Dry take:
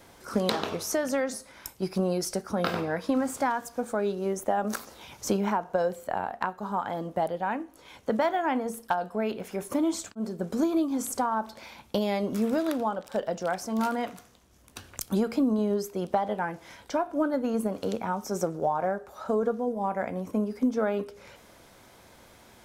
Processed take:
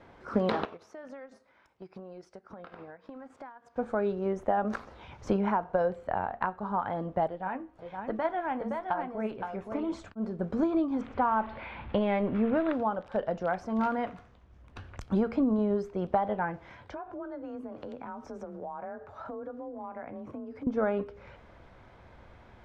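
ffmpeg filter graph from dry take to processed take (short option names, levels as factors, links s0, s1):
-filter_complex "[0:a]asettb=1/sr,asplit=3[s0][s1][s2];[s0]atrim=end=0.654[s3];[s1]atrim=start=0.65:end=3.76,asetpts=PTS-STARTPTS,afade=t=in:d=0.004:c=qsin,afade=t=out:st=3.106:d=0.004:c=qsin,highpass=f=280:p=1,acompressor=threshold=0.0112:ratio=16:attack=3.2:release=140:knee=1:detection=peak,agate=range=0.282:threshold=0.00562:ratio=16:release=100:detection=peak[s4];[s2]atrim=start=3.756[s5];[s3][s4]acrossfade=d=0.004:c1=hsin:c2=qsin[s6];[s6][s5]acrossfade=d=0.004:c1=qsin:c2=hsin,asettb=1/sr,asplit=3[s7][s8][s9];[s7]atrim=end=7.274[s10];[s8]atrim=start=7.27:end=9.93,asetpts=PTS-STARTPTS,afade=t=in:d=0.004:c=qsin,afade=t=out:st=2.656:d=0.004:c=qsin,aecho=1:1:518:0.531,atrim=end_sample=117306,flanger=delay=2.6:depth=7.1:regen=52:speed=1.1:shape=sinusoidal[s11];[s9]atrim=start=9.926[s12];[s10][s11]acrossfade=d=0.004:c1=hsin:c2=qsin[s13];[s13][s12]acrossfade=d=0.004:c1=qsin:c2=hsin,asettb=1/sr,asplit=3[s14][s15][s16];[s14]atrim=end=11.014[s17];[s15]atrim=start=11.01:end=12.73,asetpts=PTS-STARTPTS,afade=t=in:d=0.004:c=qsin,afade=t=out:st=1.716:d=0.004:c=qsin,aeval=exprs='val(0)+0.5*0.00794*sgn(val(0))':c=same,lowpass=f=3000:w=0.5412,lowpass=f=3000:w=1.3066,highshelf=f=2300:g=8[s18];[s16]atrim=start=12.726[s19];[s17][s18]acrossfade=d=0.004:c1=hsin:c2=qsin[s20];[s20][s19]acrossfade=d=0.004:c1=qsin:c2=hsin,asettb=1/sr,asplit=3[s21][s22][s23];[s21]atrim=end=16.704[s24];[s22]atrim=start=16.7:end=20.67,asetpts=PTS-STARTPTS,afade=t=in:d=0.004:c=qsin,afade=t=out:st=3.966:d=0.004:c=qsin,acompressor=threshold=0.0141:ratio=4:attack=3.2:release=140:knee=1:detection=peak,afreqshift=29[s25];[s23]atrim=start=20.666[s26];[s24][s25]acrossfade=d=0.004:c1=hsin:c2=qsin[s27];[s27][s26]acrossfade=d=0.004:c1=qsin:c2=hsin,lowpass=2100,asubboost=boost=2.5:cutoff=130"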